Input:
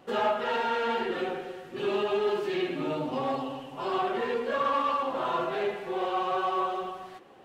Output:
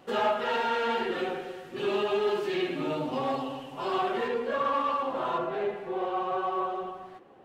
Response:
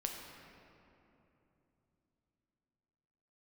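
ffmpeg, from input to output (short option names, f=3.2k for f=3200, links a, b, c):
-af "asetnsamples=n=441:p=0,asendcmd='4.28 highshelf g -4;5.38 highshelf g -11',highshelf=f=2.2k:g=2"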